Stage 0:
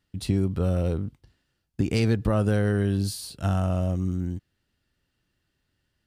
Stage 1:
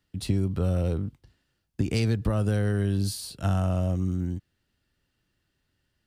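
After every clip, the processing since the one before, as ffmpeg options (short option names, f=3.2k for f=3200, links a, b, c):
-filter_complex "[0:a]acrossover=split=150|3000[a][b][c];[b]acompressor=threshold=-26dB:ratio=6[d];[a][d][c]amix=inputs=3:normalize=0"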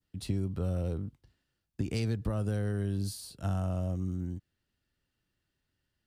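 -af "adynamicequalizer=threshold=0.00224:dfrequency=2500:dqfactor=0.8:tfrequency=2500:tqfactor=0.8:attack=5:release=100:ratio=0.375:range=2:mode=cutabove:tftype=bell,volume=-6.5dB"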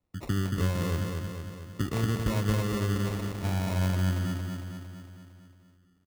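-filter_complex "[0:a]asplit=2[a][b];[b]aecho=0:1:228|456|684|912|1140|1368|1596|1824:0.596|0.351|0.207|0.122|0.0722|0.0426|0.0251|0.0148[c];[a][c]amix=inputs=2:normalize=0,acrusher=samples=28:mix=1:aa=0.000001,volume=2.5dB"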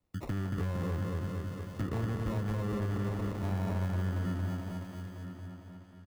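-filter_complex "[0:a]acrossover=split=850|1700[a][b][c];[a]acompressor=threshold=-29dB:ratio=4[d];[b]acompressor=threshold=-46dB:ratio=4[e];[c]acompressor=threshold=-55dB:ratio=4[f];[d][e][f]amix=inputs=3:normalize=0,asoftclip=type=hard:threshold=-27.5dB,asplit=2[g][h];[h]adelay=995,lowpass=f=3.9k:p=1,volume=-10dB,asplit=2[i][j];[j]adelay=995,lowpass=f=3.9k:p=1,volume=0.24,asplit=2[k][l];[l]adelay=995,lowpass=f=3.9k:p=1,volume=0.24[m];[g][i][k][m]amix=inputs=4:normalize=0"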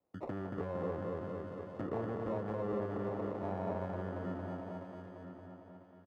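-af "bandpass=f=580:t=q:w=1.3:csg=0,volume=5dB"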